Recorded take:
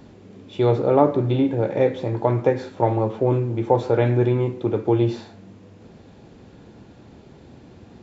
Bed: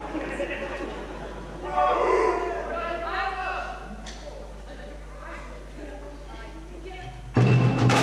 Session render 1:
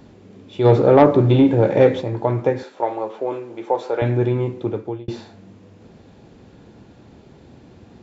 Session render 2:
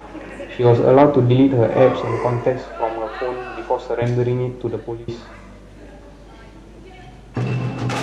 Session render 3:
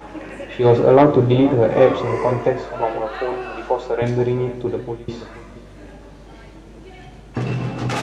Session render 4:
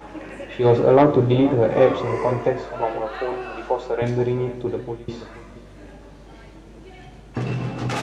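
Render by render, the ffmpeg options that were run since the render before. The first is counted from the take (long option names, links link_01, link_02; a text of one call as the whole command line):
ffmpeg -i in.wav -filter_complex "[0:a]asplit=3[link_01][link_02][link_03];[link_01]afade=type=out:start_time=0.64:duration=0.02[link_04];[link_02]acontrast=80,afade=type=in:start_time=0.64:duration=0.02,afade=type=out:start_time=2:duration=0.02[link_05];[link_03]afade=type=in:start_time=2:duration=0.02[link_06];[link_04][link_05][link_06]amix=inputs=3:normalize=0,asettb=1/sr,asplit=3[link_07][link_08][link_09];[link_07]atrim=end=2.634[link_10];[link_08]atrim=start=2.63:end=4.02,asetpts=PTS-STARTPTS,afade=type=in:duration=0.004:curve=qsin,afade=type=out:start_time=1.386:duration=0.004:curve=qsin,highpass=460[link_11];[link_09]atrim=start=4.016[link_12];[link_10][link_11]acrossfade=duration=0.004:curve1=hsin:curve2=qsin[link_13];[link_13][link_12]acrossfade=duration=0.004:curve1=qsin:curve2=hsin,asplit=2[link_14][link_15];[link_14]atrim=end=5.08,asetpts=PTS-STARTPTS,afade=type=out:start_time=4.63:duration=0.45[link_16];[link_15]atrim=start=5.08,asetpts=PTS-STARTPTS,afade=type=in:duration=0.004:curve=hsin[link_17];[link_16][link_17]concat=n=2:v=0:a=1" out.wav
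ffmpeg -i in.wav -i bed.wav -filter_complex "[1:a]volume=-3dB[link_01];[0:a][link_01]amix=inputs=2:normalize=0" out.wav
ffmpeg -i in.wav -filter_complex "[0:a]asplit=2[link_01][link_02];[link_02]adelay=13,volume=-10.5dB[link_03];[link_01][link_03]amix=inputs=2:normalize=0,asplit=2[link_04][link_05];[link_05]adelay=478.1,volume=-14dB,highshelf=frequency=4000:gain=-10.8[link_06];[link_04][link_06]amix=inputs=2:normalize=0" out.wav
ffmpeg -i in.wav -af "volume=-2.5dB" out.wav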